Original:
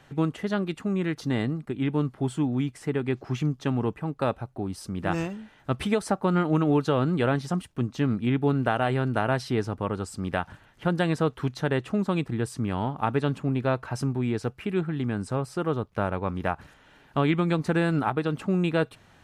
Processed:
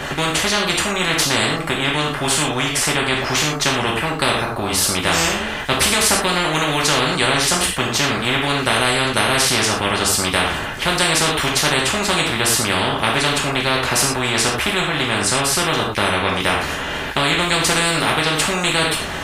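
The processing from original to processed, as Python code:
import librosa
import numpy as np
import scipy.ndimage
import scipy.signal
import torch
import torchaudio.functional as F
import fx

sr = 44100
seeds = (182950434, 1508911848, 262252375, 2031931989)

y = fx.rev_gated(x, sr, seeds[0], gate_ms=140, shape='falling', drr_db=-2.5)
y = fx.spectral_comp(y, sr, ratio=4.0)
y = y * 10.0 ** (6.0 / 20.0)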